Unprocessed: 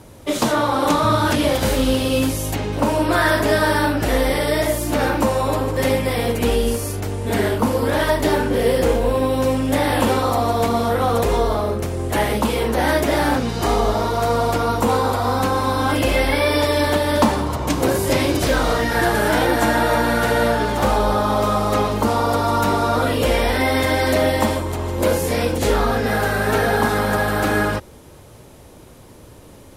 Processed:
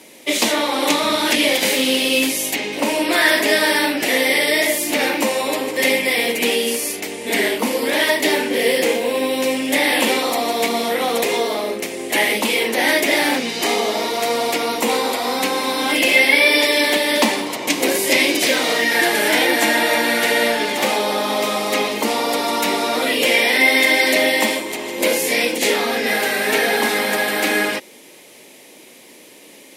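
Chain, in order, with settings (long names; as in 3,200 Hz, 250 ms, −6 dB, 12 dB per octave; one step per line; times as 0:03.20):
high-pass filter 230 Hz 24 dB per octave
high shelf with overshoot 1,700 Hz +6.5 dB, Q 3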